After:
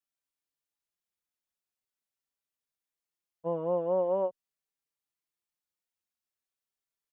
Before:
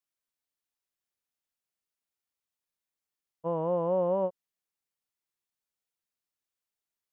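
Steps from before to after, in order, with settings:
barber-pole flanger 4.7 ms +0.44 Hz

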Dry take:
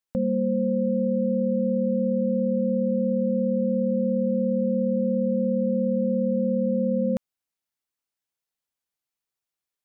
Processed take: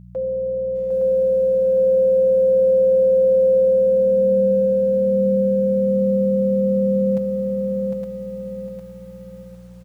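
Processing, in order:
parametric band 250 Hz −11 dB 0.3 octaves
comb filter 6 ms, depth 90%
brickwall limiter −22.5 dBFS, peak gain reduction 7.5 dB
high-pass filter sweep 450 Hz → 140 Hz, 0:03.57–0:04.79
on a send: feedback echo with a high-pass in the loop 864 ms, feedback 18%, high-pass 460 Hz, level −3.5 dB
on the sum: hum with harmonics 60 Hz, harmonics 3, −42 dBFS 0 dB per octave
feedback echo at a low word length 755 ms, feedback 35%, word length 9 bits, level −5 dB

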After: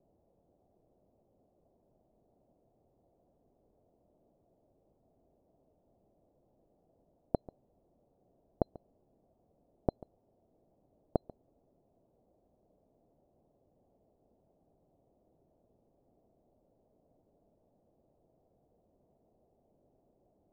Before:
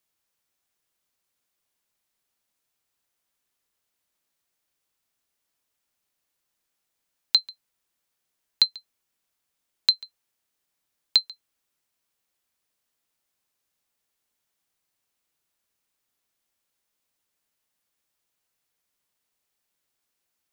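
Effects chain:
Chebyshev low-pass filter 680 Hz, order 4
in parallel at −1 dB: brickwall limiter −39 dBFS, peak gain reduction 8 dB
on the sum: level +18 dB

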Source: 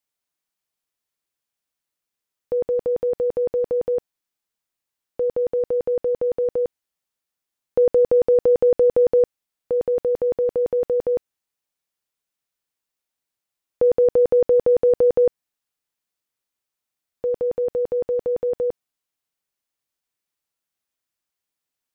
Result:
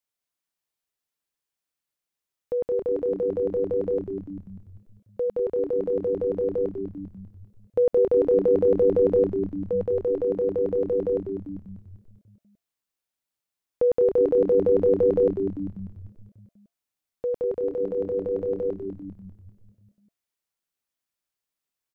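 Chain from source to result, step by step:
0:17.58–0:18.68: mains-hum notches 60/120/180/240/300/360/420/480/540/600 Hz
on a send: echo with shifted repeats 197 ms, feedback 57%, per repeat −99 Hz, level −7 dB
on the sum: level −4 dB

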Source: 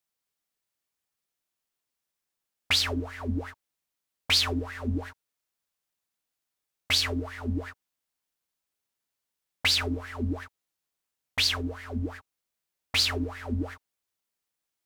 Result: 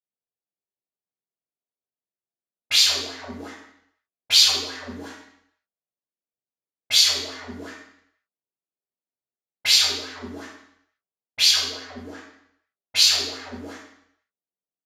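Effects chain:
low-pass that shuts in the quiet parts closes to 410 Hz, open at −26.5 dBFS
low-shelf EQ 61 Hz +8 dB
convolution reverb RT60 0.70 s, pre-delay 3 ms, DRR −10.5 dB
downsampling to 32,000 Hz
RIAA equalisation recording
level −15.5 dB

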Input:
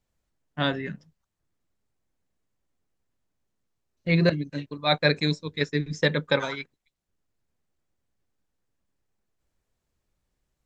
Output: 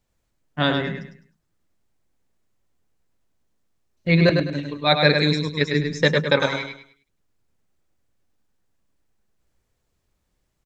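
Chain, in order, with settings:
repeating echo 103 ms, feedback 30%, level −5.5 dB
level +4.5 dB

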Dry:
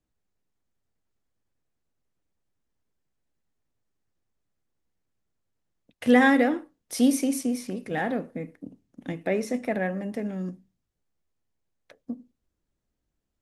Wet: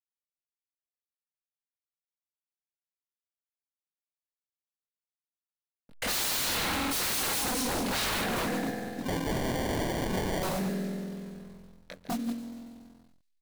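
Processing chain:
delay that plays each chunk backwards 107 ms, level −8 dB
in parallel at 0 dB: downward compressor, threshold −28 dBFS, peak gain reduction 14 dB
on the sum: spring reverb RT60 3.4 s, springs 47 ms, chirp 75 ms, DRR 5.5 dB
noise that follows the level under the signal 17 dB
slack as between gear wheels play −41 dBFS
parametric band 10,000 Hz +3.5 dB 2.3 octaves
double-tracking delay 22 ms −2 dB
on a send: delay with a high-pass on its return 141 ms, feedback 53%, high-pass 2,600 Hz, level −15.5 dB
on the sum: wave folding −25.5 dBFS
parametric band 4,100 Hz +4.5 dB 0.35 octaves
0:09.03–0:10.43: sample-rate reduction 1,300 Hz, jitter 0%

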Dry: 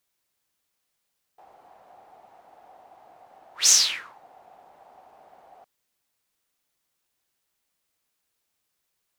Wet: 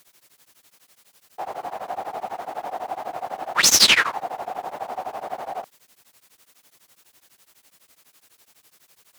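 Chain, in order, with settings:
harmonic generator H 6 −9 dB, 8 −10 dB, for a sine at −4 dBFS
high-pass filter 110 Hz 6 dB per octave
boost into a limiter +24 dB
tremolo along a rectified sine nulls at 12 Hz

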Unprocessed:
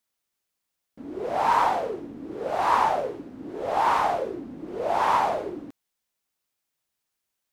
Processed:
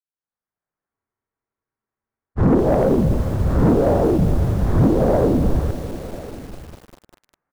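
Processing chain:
fade in at the beginning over 2.27 s
treble cut that deepens with the level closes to 360 Hz, closed at −22.5 dBFS
single-sideband voice off tune −360 Hz 150–2,100 Hz
low-shelf EQ 130 Hz −3.5 dB
in parallel at −0.5 dB: downward compressor 16 to 1, threshold −33 dBFS, peak gain reduction 8.5 dB
on the sum: hum removal 298.2 Hz, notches 3
leveller curve on the samples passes 2
on a send: single-tap delay 1,044 ms −19.5 dB
on the sum: frozen spectrum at 0:00.93, 1.45 s
feedback echo at a low word length 199 ms, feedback 80%, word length 7 bits, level −13 dB
level +9 dB

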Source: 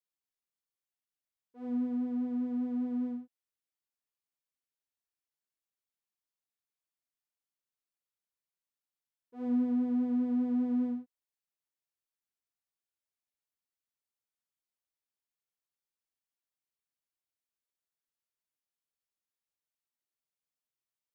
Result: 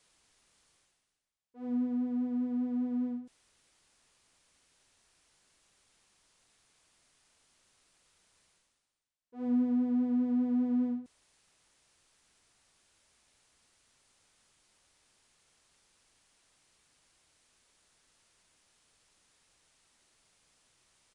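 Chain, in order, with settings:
low-shelf EQ 84 Hz +7 dB
reversed playback
upward compression, threshold −46 dBFS
reversed playback
downsampling to 22,050 Hz

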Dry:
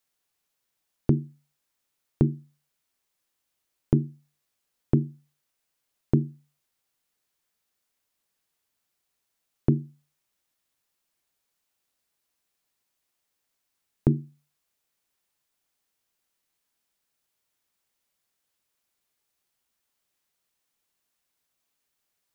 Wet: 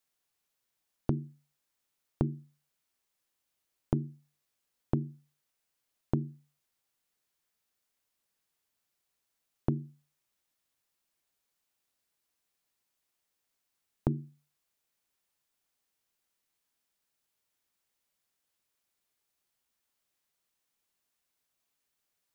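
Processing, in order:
downward compressor, threshold −21 dBFS, peak gain reduction 7 dB
level −3 dB

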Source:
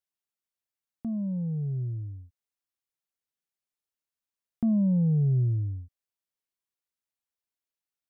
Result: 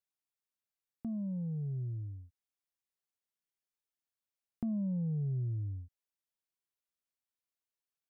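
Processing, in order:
downward compressor 2.5 to 1, threshold −31 dBFS, peak gain reduction 6 dB
level −4.5 dB

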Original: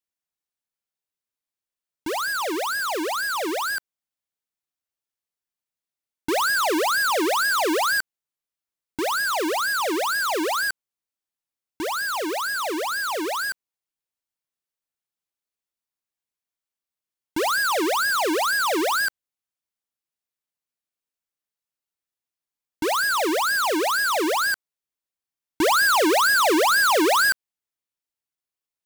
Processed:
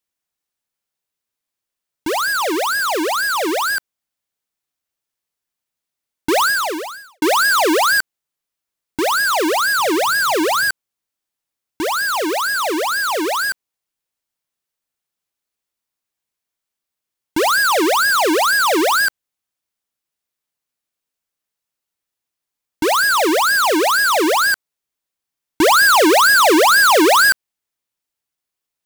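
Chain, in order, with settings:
0:06.42–0:07.22: fade out quadratic
0:09.78–0:10.70: parametric band 130 Hz +12.5 dB 0.52 octaves
level +7 dB

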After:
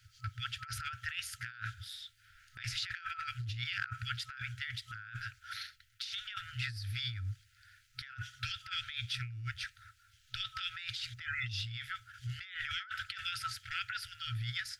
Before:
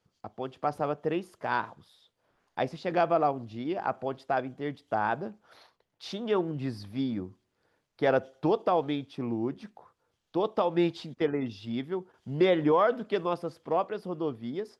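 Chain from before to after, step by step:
brick-wall band-stop 120–1,300 Hz
compressor whose output falls as the input rises −50 dBFS, ratio −1
level +9 dB

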